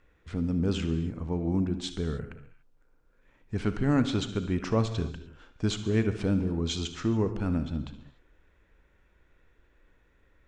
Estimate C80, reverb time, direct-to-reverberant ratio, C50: 12.0 dB, not exponential, 9.5 dB, 10.0 dB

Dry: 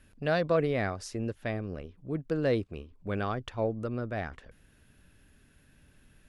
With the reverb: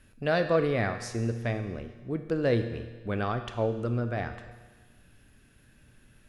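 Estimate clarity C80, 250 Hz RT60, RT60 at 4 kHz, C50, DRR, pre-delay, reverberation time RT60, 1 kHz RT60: 10.5 dB, 1.4 s, 1.4 s, 9.5 dB, 7.5 dB, 8 ms, 1.4 s, 1.4 s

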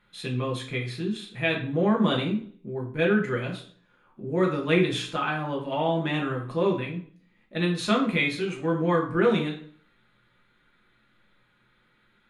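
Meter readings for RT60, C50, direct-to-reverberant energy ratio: 0.50 s, 8.5 dB, -1.5 dB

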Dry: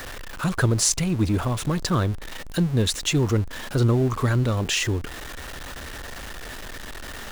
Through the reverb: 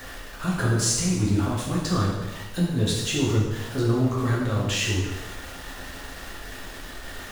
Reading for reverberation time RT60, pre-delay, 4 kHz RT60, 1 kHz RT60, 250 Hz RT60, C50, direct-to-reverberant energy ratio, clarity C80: 1.1 s, 5 ms, 1.0 s, 1.1 s, 1.0 s, 1.5 dB, -5.0 dB, 4.0 dB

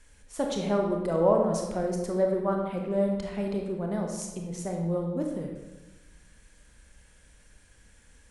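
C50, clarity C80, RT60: 3.0 dB, 5.5 dB, 1.1 s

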